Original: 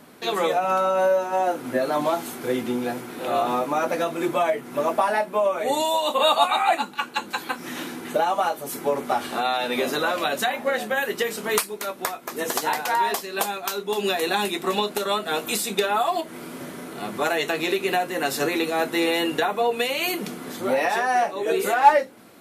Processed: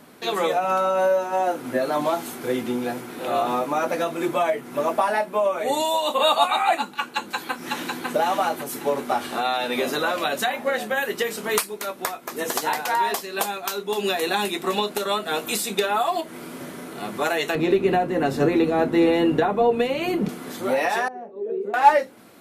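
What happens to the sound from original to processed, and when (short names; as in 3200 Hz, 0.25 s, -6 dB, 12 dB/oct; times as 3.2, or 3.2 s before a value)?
7.06–8.08 echo throw 0.55 s, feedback 40%, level -2.5 dB
17.55–20.29 tilt -4 dB/oct
21.08–21.74 double band-pass 300 Hz, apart 0.83 oct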